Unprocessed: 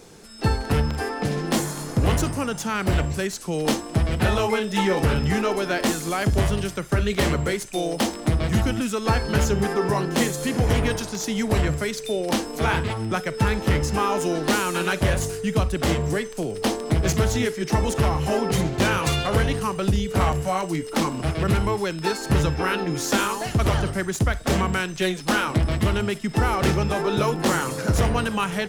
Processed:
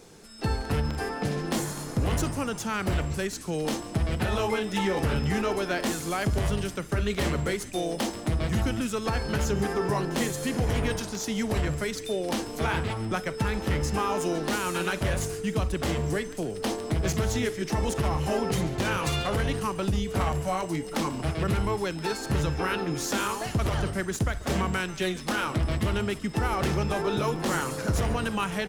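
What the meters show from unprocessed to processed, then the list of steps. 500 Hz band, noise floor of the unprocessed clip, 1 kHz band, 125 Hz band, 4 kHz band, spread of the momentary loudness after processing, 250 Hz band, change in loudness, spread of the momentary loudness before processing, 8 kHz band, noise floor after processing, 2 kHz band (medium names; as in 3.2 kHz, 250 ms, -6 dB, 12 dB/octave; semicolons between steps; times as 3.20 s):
-5.0 dB, -35 dBFS, -5.0 dB, -5.5 dB, -5.0 dB, 3 LU, -5.0 dB, -5.0 dB, 4 LU, -4.5 dB, -38 dBFS, -5.0 dB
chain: peak limiter -13 dBFS, peak gain reduction 6.5 dB; frequency-shifting echo 141 ms, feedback 56%, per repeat -130 Hz, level -18 dB; trim -4 dB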